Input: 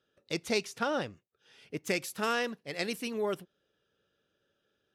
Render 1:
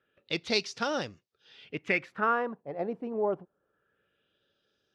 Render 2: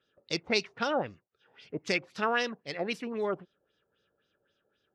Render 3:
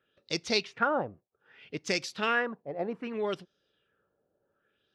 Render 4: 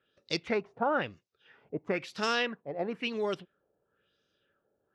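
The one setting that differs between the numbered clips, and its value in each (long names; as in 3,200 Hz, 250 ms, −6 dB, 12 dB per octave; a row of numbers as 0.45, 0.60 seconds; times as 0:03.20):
auto-filter low-pass, speed: 0.25, 3.8, 0.64, 1 Hertz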